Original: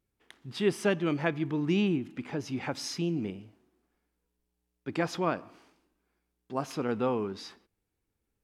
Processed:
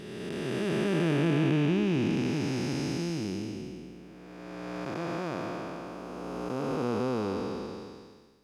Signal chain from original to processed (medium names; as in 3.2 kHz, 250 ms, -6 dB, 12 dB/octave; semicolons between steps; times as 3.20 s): spectral blur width 1020 ms; trim +8 dB